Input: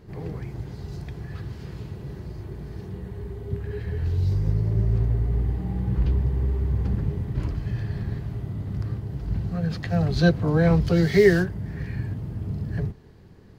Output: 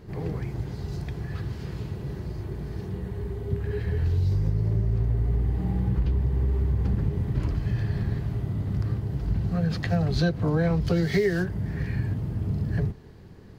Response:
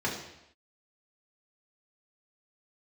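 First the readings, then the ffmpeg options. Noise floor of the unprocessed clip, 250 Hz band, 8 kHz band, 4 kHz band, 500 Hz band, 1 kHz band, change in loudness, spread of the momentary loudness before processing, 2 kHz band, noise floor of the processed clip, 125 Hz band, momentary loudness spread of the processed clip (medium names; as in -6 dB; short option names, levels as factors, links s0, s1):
-47 dBFS, -2.5 dB, no reading, -1.5 dB, -5.0 dB, -2.0 dB, -2.0 dB, 16 LU, -4.5 dB, -45 dBFS, -0.5 dB, 10 LU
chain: -af "acompressor=threshold=0.0794:ratio=10,volume=1.33"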